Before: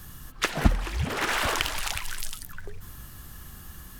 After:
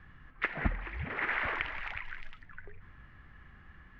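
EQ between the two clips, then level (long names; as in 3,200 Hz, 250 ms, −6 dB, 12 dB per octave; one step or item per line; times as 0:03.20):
transistor ladder low-pass 2,300 Hz, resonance 60%
0.0 dB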